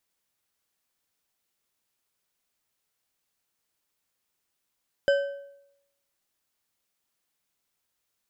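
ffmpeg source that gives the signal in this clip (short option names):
-f lavfi -i "aevalsrc='0.15*pow(10,-3*t/0.81)*sin(2*PI*561*t)+0.0596*pow(10,-3*t/0.598)*sin(2*PI*1546.7*t)+0.0237*pow(10,-3*t/0.488)*sin(2*PI*3031.6*t)+0.00944*pow(10,-3*t/0.42)*sin(2*PI*5011.4*t)+0.00376*pow(10,-3*t/0.372)*sin(2*PI*7483.7*t)':d=1.55:s=44100"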